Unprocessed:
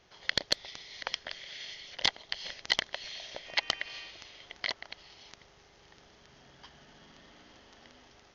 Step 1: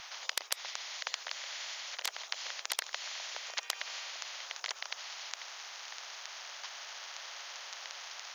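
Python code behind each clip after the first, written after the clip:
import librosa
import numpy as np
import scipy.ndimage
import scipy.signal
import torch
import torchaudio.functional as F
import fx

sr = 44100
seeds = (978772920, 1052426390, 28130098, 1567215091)

y = scipy.signal.sosfilt(scipy.signal.cheby2(4, 80, 160.0, 'highpass', fs=sr, output='sos'), x)
y = fx.spectral_comp(y, sr, ratio=4.0)
y = y * librosa.db_to_amplitude(-2.5)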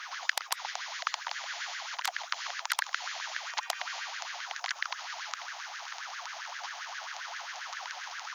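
y = fx.filter_lfo_highpass(x, sr, shape='sine', hz=7.5, low_hz=700.0, high_hz=1700.0, q=6.3)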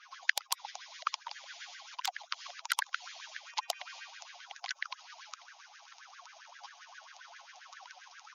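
y = fx.bin_expand(x, sr, power=2.0)
y = y * librosa.db_to_amplitude(2.0)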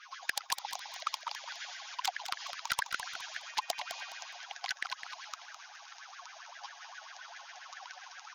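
y = 10.0 ** (-24.5 / 20.0) * np.tanh(x / 10.0 ** (-24.5 / 20.0))
y = fx.echo_feedback(y, sr, ms=208, feedback_pct=32, wet_db=-9)
y = y * librosa.db_to_amplitude(3.5)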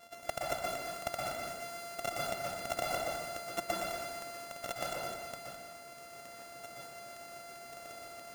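y = np.r_[np.sort(x[:len(x) // 64 * 64].reshape(-1, 64), axis=1).ravel(), x[len(x) // 64 * 64:]]
y = fx.rev_plate(y, sr, seeds[0], rt60_s=1.1, hf_ratio=0.75, predelay_ms=110, drr_db=-3.5)
y = y * librosa.db_to_amplitude(-3.0)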